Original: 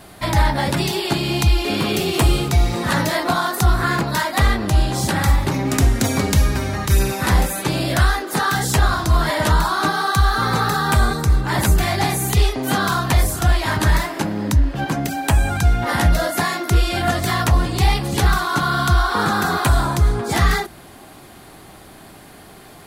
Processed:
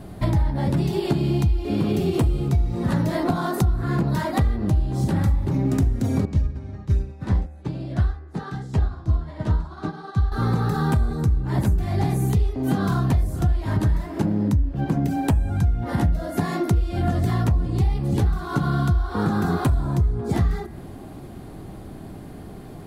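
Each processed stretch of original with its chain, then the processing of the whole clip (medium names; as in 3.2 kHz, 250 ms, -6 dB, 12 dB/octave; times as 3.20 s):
6.25–10.32 s: low-pass 6.4 kHz + upward expansion 2.5:1, over -27 dBFS
whole clip: tilt shelf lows +10 dB, about 630 Hz; de-hum 75.04 Hz, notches 35; compression 6:1, threshold -18 dBFS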